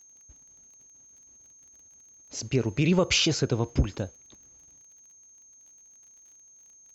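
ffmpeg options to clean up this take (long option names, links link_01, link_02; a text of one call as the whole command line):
ffmpeg -i in.wav -af "adeclick=threshold=4,bandreject=frequency=6400:width=30" out.wav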